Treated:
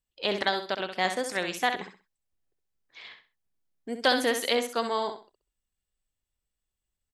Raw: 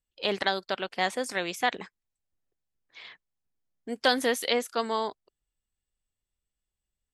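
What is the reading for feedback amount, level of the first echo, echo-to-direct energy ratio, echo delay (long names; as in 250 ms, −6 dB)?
26%, −8.0 dB, −7.5 dB, 65 ms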